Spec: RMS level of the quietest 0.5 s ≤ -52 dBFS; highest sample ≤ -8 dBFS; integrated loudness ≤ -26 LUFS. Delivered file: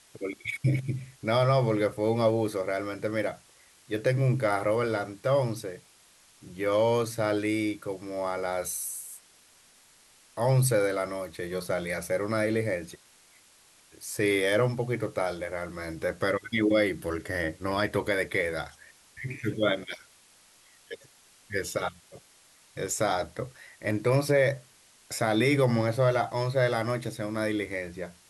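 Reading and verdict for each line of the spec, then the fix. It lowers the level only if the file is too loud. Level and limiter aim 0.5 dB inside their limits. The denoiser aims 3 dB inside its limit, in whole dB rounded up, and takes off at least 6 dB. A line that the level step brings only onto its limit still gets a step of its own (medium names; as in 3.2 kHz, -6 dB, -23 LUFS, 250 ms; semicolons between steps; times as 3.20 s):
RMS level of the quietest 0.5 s -59 dBFS: pass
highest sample -12.5 dBFS: pass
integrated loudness -28.5 LUFS: pass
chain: none needed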